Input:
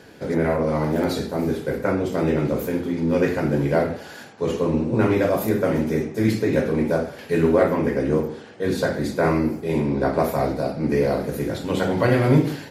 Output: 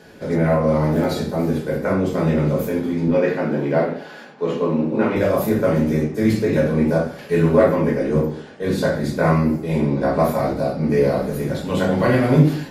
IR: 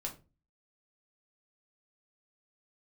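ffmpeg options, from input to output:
-filter_complex "[0:a]asettb=1/sr,asplit=3[a][b][c];[a]atrim=end=3.084[d];[b]atrim=start=3.08:end=5.16,asetpts=PTS-STARTPTS,afade=t=in:d=0.004:c=qsin,afade=t=out:st=2.076:d=0.004:c=qsin,acrossover=split=160 4600:gain=0.0794 1 0.251[e][f][g];[e][f][g]amix=inputs=3:normalize=0[h];[c]atrim=start=5.156[i];[d][h]acrossfade=d=0.004:c1=hsin:c2=qsin[j];[j][i]acrossfade=d=0.004:c1=qsin:c2=hsin[k];[1:a]atrim=start_sample=2205,afade=t=out:st=0.16:d=0.01,atrim=end_sample=7497[l];[k][l]afir=irnorm=-1:irlink=0,volume=2dB"

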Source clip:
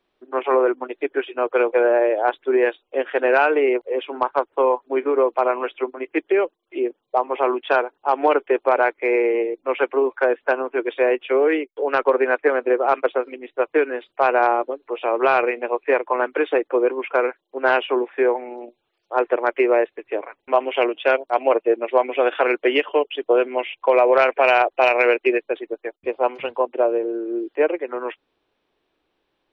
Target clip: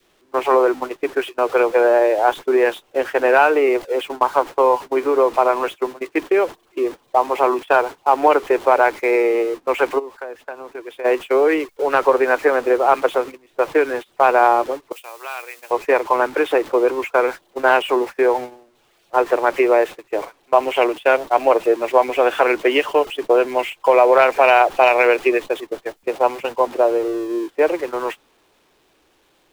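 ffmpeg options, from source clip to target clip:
-filter_complex "[0:a]aeval=exprs='val(0)+0.5*0.0251*sgn(val(0))':c=same,adynamicequalizer=threshold=0.0251:dfrequency=920:dqfactor=1.6:tfrequency=920:tqfactor=1.6:attack=5:release=100:ratio=0.375:range=2:mode=boostabove:tftype=bell,agate=range=-23dB:threshold=-26dB:ratio=16:detection=peak,asplit=3[a][b][c];[a]afade=t=out:st=9.98:d=0.02[d];[b]acompressor=threshold=-35dB:ratio=3,afade=t=in:st=9.98:d=0.02,afade=t=out:st=11.04:d=0.02[e];[c]afade=t=in:st=11.04:d=0.02[f];[d][e][f]amix=inputs=3:normalize=0,asettb=1/sr,asplit=3[g][h][i];[g]atrim=end=14.924[j];[h]atrim=start=14.92:end=15.71,asetpts=PTS-STARTPTS,afade=t=in:d=0.004:c=qsin,afade=t=out:st=0.786:d=0.004:c=qsin,aderivative[k];[i]atrim=start=15.706[l];[j][k]acrossfade=d=0.004:c1=hsin:c2=qsin[m];[m][l]acrossfade=d=0.004:c1=qsin:c2=hsin,volume=1dB"

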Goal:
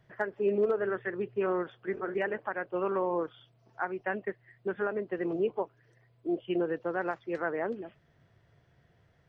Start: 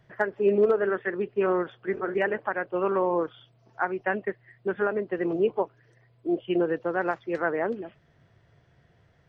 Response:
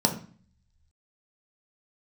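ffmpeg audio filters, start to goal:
-filter_complex "[0:a]asettb=1/sr,asplit=3[a][b][c];[a]atrim=end=0.774[d];[b]atrim=start=0.77:end=1.4,asetpts=PTS-STARTPTS,afade=t=in:d=0.004:c=qsin,afade=t=out:st=0.626:d=0.004:c=qsin,equalizer=f=120:t=o:w=0.33:g=10[e];[c]atrim=start=1.396[f];[d][e]acrossfade=d=0.004:c1=hsin:c2=qsin[g];[g][f]acrossfade=d=0.004:c1=qsin:c2=hsin,asplit=2[h][i];[i]alimiter=limit=-20dB:level=0:latency=1:release=289,volume=-3dB[j];[h][j]amix=inputs=2:normalize=0,volume=-8.5dB"

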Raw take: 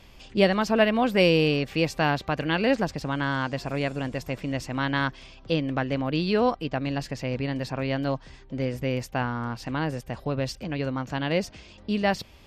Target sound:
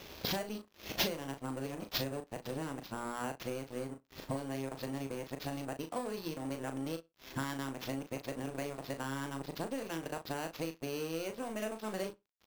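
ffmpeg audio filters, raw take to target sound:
-filter_complex "[0:a]areverse,highpass=f=57:p=1,equalizer=f=380:w=0.63:g=11.5,bandreject=f=60:t=h:w=6,bandreject=f=120:t=h:w=6,bandreject=f=180:t=h:w=6,bandreject=f=240:t=h:w=6,bandreject=f=300:t=h:w=6,bandreject=f=360:t=h:w=6,bandreject=f=420:t=h:w=6,bandreject=f=480:t=h:w=6,bandreject=f=540:t=h:w=6,acompressor=threshold=-38dB:ratio=16,aemphasis=mode=production:type=75fm,acrusher=samples=5:mix=1:aa=0.000001,aeval=exprs='sgn(val(0))*max(abs(val(0))-0.00316,0)':c=same,asplit=2[a][b];[b]adelay=37,volume=-8dB[c];[a][c]amix=inputs=2:normalize=0,asplit=2[d][e];[e]adelay=61,lowpass=f=4.3k:p=1,volume=-23.5dB,asplit=2[f][g];[g]adelay=61,lowpass=f=4.3k:p=1,volume=0.2[h];[d][f][h]amix=inputs=3:normalize=0,volume=4.5dB"

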